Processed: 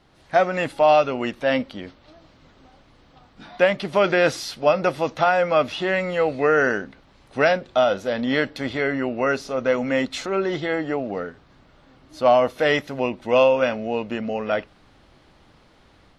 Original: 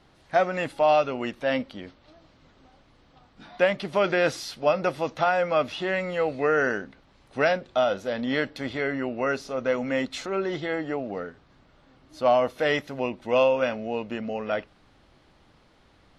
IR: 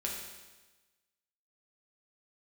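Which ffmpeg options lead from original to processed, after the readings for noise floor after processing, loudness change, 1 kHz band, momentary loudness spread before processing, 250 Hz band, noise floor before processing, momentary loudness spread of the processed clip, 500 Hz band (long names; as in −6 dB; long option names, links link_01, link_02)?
−55 dBFS, +4.5 dB, +4.5 dB, 9 LU, +4.5 dB, −59 dBFS, 9 LU, +4.5 dB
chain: -af "dynaudnorm=framelen=100:gausssize=3:maxgain=4.5dB"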